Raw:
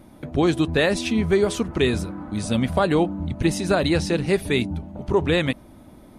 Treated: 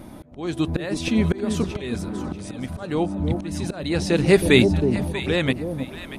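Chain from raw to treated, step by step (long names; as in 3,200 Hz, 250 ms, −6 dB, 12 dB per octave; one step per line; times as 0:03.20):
volume swells 739 ms
delay that swaps between a low-pass and a high-pass 319 ms, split 820 Hz, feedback 51%, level −6 dB
level +7 dB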